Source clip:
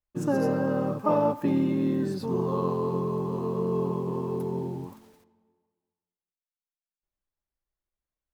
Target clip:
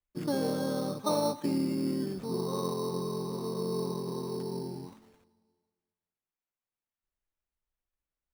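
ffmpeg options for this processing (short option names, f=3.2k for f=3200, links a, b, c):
-filter_complex "[0:a]lowshelf=f=120:g=6,acrossover=split=140|680|1500[a][b][c][d];[a]acompressor=threshold=-53dB:ratio=6[e];[e][b][c][d]amix=inputs=4:normalize=0,acrusher=samples=9:mix=1:aa=0.000001,volume=-5.5dB"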